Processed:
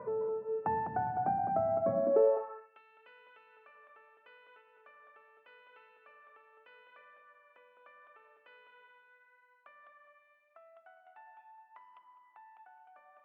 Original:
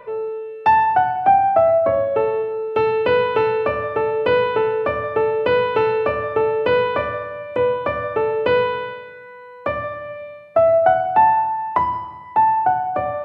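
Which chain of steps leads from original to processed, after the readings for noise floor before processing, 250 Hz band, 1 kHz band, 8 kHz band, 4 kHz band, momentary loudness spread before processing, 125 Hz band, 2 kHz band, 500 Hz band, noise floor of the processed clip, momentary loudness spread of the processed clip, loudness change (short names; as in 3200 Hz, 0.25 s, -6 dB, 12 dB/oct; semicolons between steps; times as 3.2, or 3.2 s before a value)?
-39 dBFS, -14.0 dB, -21.5 dB, n/a, -35.0 dB, 12 LU, -17.0 dB, -28.0 dB, -18.5 dB, -67 dBFS, 9 LU, -13.0 dB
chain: dynamic EQ 940 Hz, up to -5 dB, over -26 dBFS, Q 1.4; compressor 2:1, threshold -34 dBFS, peak gain reduction 11.5 dB; EQ curve 100 Hz 0 dB, 200 Hz +13 dB, 320 Hz +5 dB, 1200 Hz +2 dB, 1700 Hz -3 dB, 3700 Hz -29 dB; tape echo 0.206 s, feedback 32%, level -3 dB, low-pass 1100 Hz; high-pass sweep 90 Hz -> 3400 Hz, 1.79–2.79; gain -8 dB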